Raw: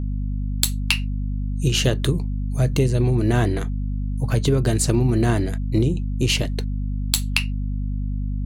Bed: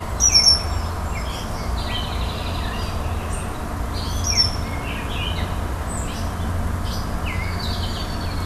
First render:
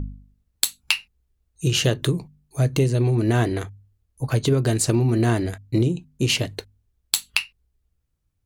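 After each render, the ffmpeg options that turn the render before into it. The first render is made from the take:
-af "bandreject=f=50:t=h:w=4,bandreject=f=100:t=h:w=4,bandreject=f=150:t=h:w=4,bandreject=f=200:t=h:w=4,bandreject=f=250:t=h:w=4"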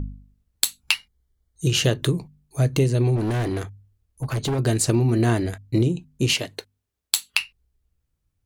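-filter_complex "[0:a]asettb=1/sr,asplit=3[s0][s1][s2];[s0]atrim=end=0.944[s3];[s1]atrim=start=0.94:end=1.67,asetpts=PTS-STARTPTS,afade=t=in:d=0.004:c=qsin,afade=t=out:st=0.726:d=0.004:c=qsin,asuperstop=centerf=2600:order=12:qfactor=5.6[s4];[s2]atrim=start=1.666[s5];[s3][s4]acrossfade=d=0.004:c1=hsin:c2=qsin[s6];[s6][s5]acrossfade=d=0.004:c1=qsin:c2=hsin,asettb=1/sr,asplit=3[s7][s8][s9];[s7]atrim=end=3.164[s10];[s8]atrim=start=3.16:end=4.59,asetpts=PTS-STARTPTS,afade=t=in:d=0.004:c=qsin,afade=t=out:st=1.426:d=0.004:c=qsin,asoftclip=type=hard:threshold=0.0891[s11];[s9]atrim=start=4.586[s12];[s10][s11]acrossfade=d=0.004:c1=hsin:c2=qsin[s13];[s13][s12]acrossfade=d=0.004:c1=qsin:c2=hsin,asettb=1/sr,asplit=3[s14][s15][s16];[s14]atrim=end=6.334[s17];[s15]atrim=start=6.33:end=7.4,asetpts=PTS-STARTPTS,afade=t=in:d=0.004:c=qsin,afade=t=out:st=1.066:d=0.004:c=qsin,highpass=f=390:p=1[s18];[s16]atrim=start=7.396[s19];[s17][s18]acrossfade=d=0.004:c1=hsin:c2=qsin[s20];[s20][s19]acrossfade=d=0.004:c1=qsin:c2=hsin"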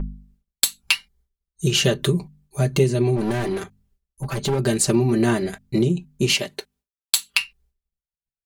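-af "agate=range=0.0224:threshold=0.00178:ratio=3:detection=peak,aecho=1:1:5.1:0.84"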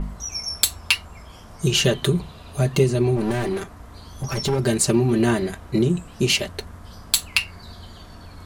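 -filter_complex "[1:a]volume=0.158[s0];[0:a][s0]amix=inputs=2:normalize=0"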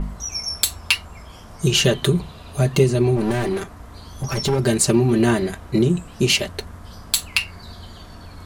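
-af "volume=1.26,alimiter=limit=0.708:level=0:latency=1"

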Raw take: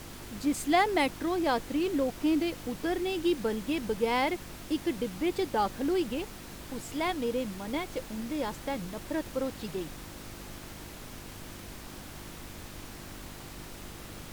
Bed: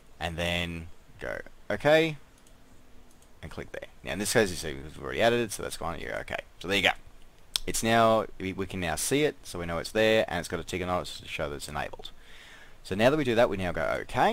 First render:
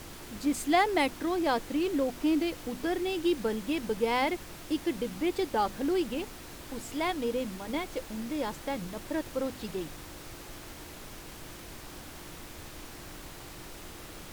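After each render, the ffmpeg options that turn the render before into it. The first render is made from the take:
-af "bandreject=f=50:t=h:w=4,bandreject=f=100:t=h:w=4,bandreject=f=150:t=h:w=4,bandreject=f=200:t=h:w=4,bandreject=f=250:t=h:w=4"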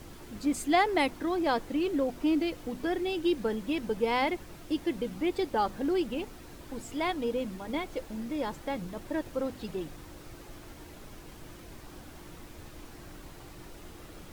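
-af "afftdn=nr=7:nf=-46"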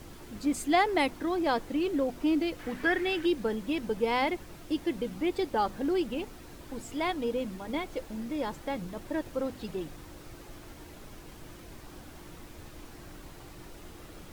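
-filter_complex "[0:a]asettb=1/sr,asplit=3[s0][s1][s2];[s0]atrim=end=2.594[s3];[s1]atrim=start=2.59:end=3.26,asetpts=PTS-STARTPTS,afade=t=in:d=0.004:c=qsin,afade=t=out:st=0.666:d=0.004:c=qsin,equalizer=f=1800:t=o:w=1.1:g=13.5[s4];[s2]atrim=start=3.256[s5];[s3][s4]acrossfade=d=0.004:c1=hsin:c2=qsin[s6];[s6][s5]acrossfade=d=0.004:c1=qsin:c2=hsin"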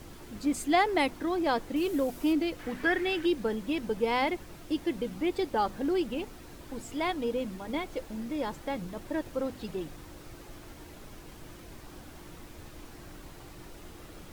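-filter_complex "[0:a]asettb=1/sr,asplit=3[s0][s1][s2];[s0]atrim=end=1.764[s3];[s1]atrim=start=1.76:end=2.33,asetpts=PTS-STARTPTS,afade=t=in:d=0.004:c=qsin,afade=t=out:st=0.566:d=0.004:c=qsin,equalizer=f=14000:w=0.38:g=10.5[s4];[s2]atrim=start=2.326[s5];[s3][s4]acrossfade=d=0.004:c1=hsin:c2=qsin[s6];[s6][s5]acrossfade=d=0.004:c1=qsin:c2=hsin"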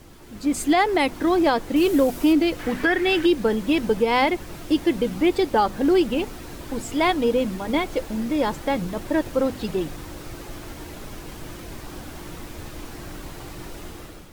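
-af "alimiter=limit=0.1:level=0:latency=1:release=288,dynaudnorm=f=200:g=5:m=3.35"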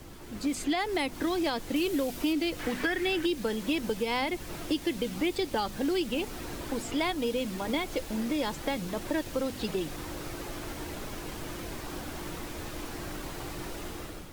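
-filter_complex "[0:a]acrossover=split=240|2300|5100[s0][s1][s2][s3];[s0]acompressor=threshold=0.0112:ratio=4[s4];[s1]acompressor=threshold=0.0282:ratio=4[s5];[s2]acompressor=threshold=0.0158:ratio=4[s6];[s3]acompressor=threshold=0.00631:ratio=4[s7];[s4][s5][s6][s7]amix=inputs=4:normalize=0"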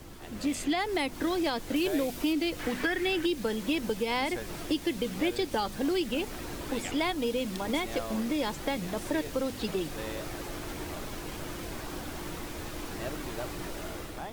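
-filter_complex "[1:a]volume=0.133[s0];[0:a][s0]amix=inputs=2:normalize=0"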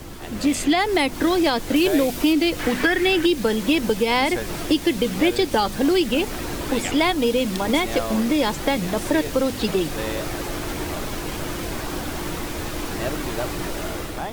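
-af "volume=3.16"

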